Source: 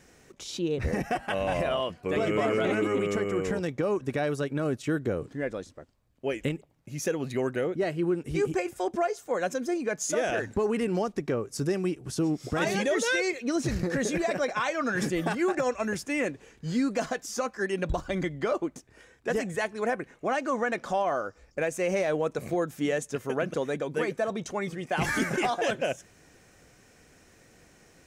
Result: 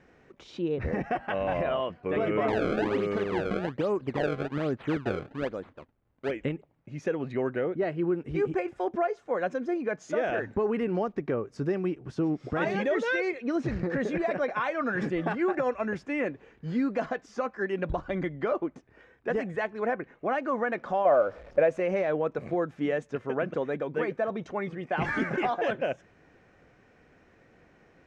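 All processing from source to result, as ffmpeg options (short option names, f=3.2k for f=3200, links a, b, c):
-filter_complex "[0:a]asettb=1/sr,asplit=3[a][b][c];[a]atrim=end=2.484[d];[b]atrim=start=2.48:end=6.31,asetpts=PTS-STARTPTS,afade=t=in:d=0.004:c=qsin,afade=t=out:st=3.826:d=0.004:c=qsin,acrusher=samples=27:mix=1:aa=0.000001:lfo=1:lforange=43.2:lforate=1.2,bandreject=f=5.4k:w=14[e];[c]atrim=start=6.306[f];[d][e]acrossfade=d=0.004:c1=hsin:c2=qsin[g];[g][f]acrossfade=d=0.004:c1=qsin:c2=hsin,asettb=1/sr,asplit=3[h][i][j];[h]atrim=end=21.054[k];[i]atrim=start=21.05:end=21.8,asetpts=PTS-STARTPTS,afade=t=in:d=0.004:c=qsin,afade=t=out:st=0.746:d=0.004:c=qsin,aeval=exprs='val(0)+0.5*0.00596*sgn(val(0))':c=same,equalizer=f=580:t=o:w=0.42:g=12.5[l];[j]atrim=start=21.796[m];[k][l]acrossfade=d=0.004:c1=hsin:c2=qsin[n];[n][m]acrossfade=d=0.004:c1=qsin:c2=hsin,lowpass=2.2k,lowshelf=f=120:g=-4.5"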